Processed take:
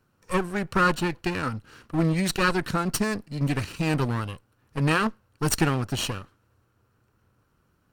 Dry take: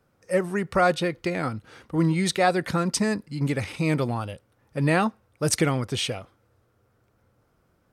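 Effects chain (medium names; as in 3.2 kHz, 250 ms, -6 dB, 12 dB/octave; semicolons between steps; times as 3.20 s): comb filter that takes the minimum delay 0.7 ms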